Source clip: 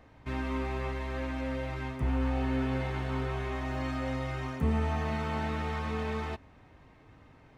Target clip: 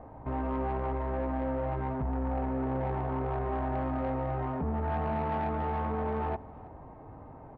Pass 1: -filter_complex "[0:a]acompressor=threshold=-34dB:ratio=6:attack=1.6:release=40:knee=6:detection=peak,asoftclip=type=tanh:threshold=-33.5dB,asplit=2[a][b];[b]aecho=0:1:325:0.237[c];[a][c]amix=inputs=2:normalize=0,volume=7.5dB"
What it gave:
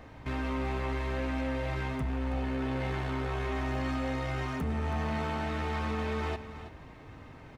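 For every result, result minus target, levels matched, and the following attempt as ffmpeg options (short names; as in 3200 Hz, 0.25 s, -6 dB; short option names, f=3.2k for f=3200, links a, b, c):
echo-to-direct +9.5 dB; 1000 Hz band -3.5 dB
-filter_complex "[0:a]acompressor=threshold=-34dB:ratio=6:attack=1.6:release=40:knee=6:detection=peak,asoftclip=type=tanh:threshold=-33.5dB,asplit=2[a][b];[b]aecho=0:1:325:0.0794[c];[a][c]amix=inputs=2:normalize=0,volume=7.5dB"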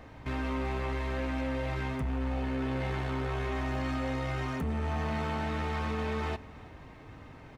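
1000 Hz band -3.5 dB
-filter_complex "[0:a]acompressor=threshold=-34dB:ratio=6:attack=1.6:release=40:knee=6:detection=peak,lowpass=f=830:t=q:w=2.2,asoftclip=type=tanh:threshold=-33.5dB,asplit=2[a][b];[b]aecho=0:1:325:0.0794[c];[a][c]amix=inputs=2:normalize=0,volume=7.5dB"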